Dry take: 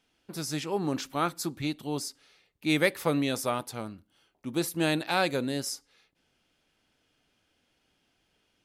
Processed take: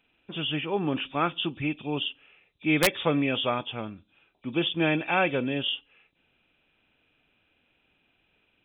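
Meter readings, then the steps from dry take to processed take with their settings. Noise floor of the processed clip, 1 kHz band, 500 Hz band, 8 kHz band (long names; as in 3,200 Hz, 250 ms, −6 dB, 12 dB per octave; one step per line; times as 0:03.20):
−71 dBFS, +2.0 dB, +1.5 dB, −5.5 dB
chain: hearing-aid frequency compression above 2,300 Hz 4 to 1
wrap-around overflow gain 13.5 dB
level +2 dB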